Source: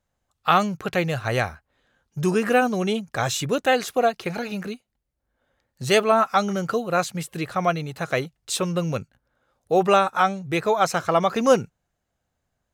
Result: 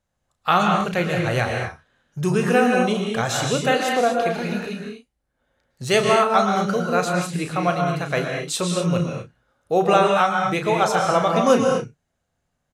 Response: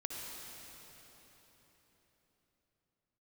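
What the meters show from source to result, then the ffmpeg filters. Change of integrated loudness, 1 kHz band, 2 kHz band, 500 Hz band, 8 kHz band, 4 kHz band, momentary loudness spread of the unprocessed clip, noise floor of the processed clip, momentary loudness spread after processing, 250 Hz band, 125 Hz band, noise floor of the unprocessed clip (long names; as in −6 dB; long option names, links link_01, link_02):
+2.5 dB, +2.5 dB, +2.5 dB, +2.0 dB, +2.5 dB, +2.5 dB, 11 LU, −76 dBFS, 11 LU, +3.5 dB, +4.0 dB, −78 dBFS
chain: -filter_complex "[0:a]asplit=2[link_01][link_02];[link_02]adelay=34,volume=-9dB[link_03];[link_01][link_03]amix=inputs=2:normalize=0[link_04];[1:a]atrim=start_sample=2205,afade=type=out:start_time=0.18:duration=0.01,atrim=end_sample=8379,asetrate=22932,aresample=44100[link_05];[link_04][link_05]afir=irnorm=-1:irlink=0"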